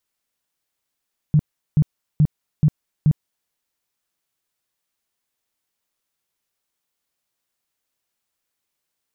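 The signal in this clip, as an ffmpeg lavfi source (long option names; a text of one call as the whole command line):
ffmpeg -f lavfi -i "aevalsrc='0.299*sin(2*PI*151*mod(t,0.43))*lt(mod(t,0.43),8/151)':duration=2.15:sample_rate=44100" out.wav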